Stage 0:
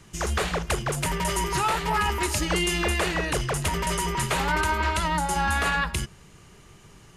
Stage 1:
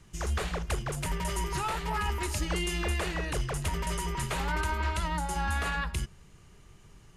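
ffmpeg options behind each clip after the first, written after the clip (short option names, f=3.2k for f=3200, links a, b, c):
-af "lowshelf=f=82:g=10.5,volume=-8dB"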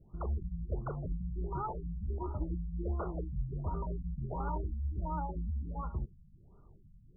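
-af "afftfilt=real='re*lt(b*sr/1024,210*pow(1500/210,0.5+0.5*sin(2*PI*1.4*pts/sr)))':imag='im*lt(b*sr/1024,210*pow(1500/210,0.5+0.5*sin(2*PI*1.4*pts/sr)))':win_size=1024:overlap=0.75,volume=-3.5dB"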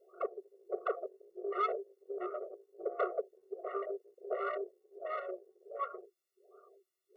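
-af "aeval=exprs='(tanh(39.8*val(0)+0.35)-tanh(0.35))/39.8':c=same,afftfilt=real='re*eq(mod(floor(b*sr/1024/370),2),1)':imag='im*eq(mod(floor(b*sr/1024/370),2),1)':win_size=1024:overlap=0.75,volume=11.5dB"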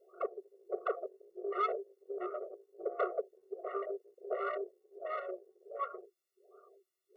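-af anull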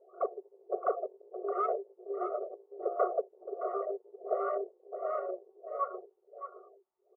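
-filter_complex "[0:a]lowpass=f=890:t=q:w=11,asplit=2[a][b];[b]aecho=0:1:618:0.316[c];[a][c]amix=inputs=2:normalize=0"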